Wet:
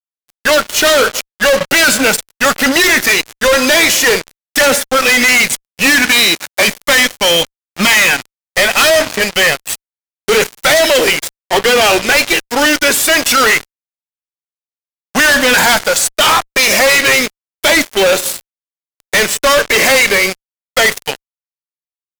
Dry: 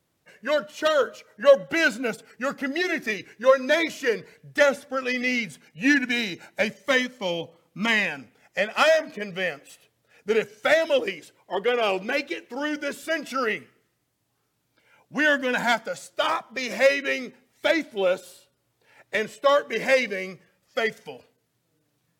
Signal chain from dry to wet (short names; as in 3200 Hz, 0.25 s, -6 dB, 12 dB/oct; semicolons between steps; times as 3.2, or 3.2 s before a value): tilt +3 dB/oct; reverb, pre-delay 3 ms, DRR 18.5 dB; fuzz box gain 38 dB, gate -38 dBFS; 5.98–6.66 HPF 43 Hz -> 160 Hz; gain +5.5 dB